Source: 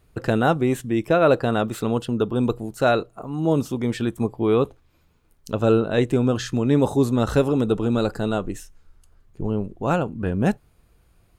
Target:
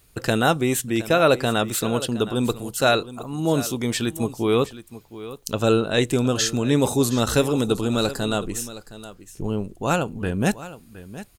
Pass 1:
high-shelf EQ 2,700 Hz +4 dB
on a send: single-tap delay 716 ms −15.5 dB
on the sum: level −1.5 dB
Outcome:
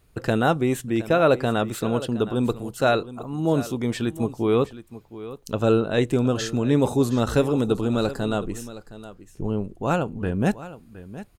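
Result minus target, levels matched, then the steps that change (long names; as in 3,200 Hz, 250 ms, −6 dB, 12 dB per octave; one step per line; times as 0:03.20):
4,000 Hz band −6.5 dB
change: high-shelf EQ 2,700 Hz +16 dB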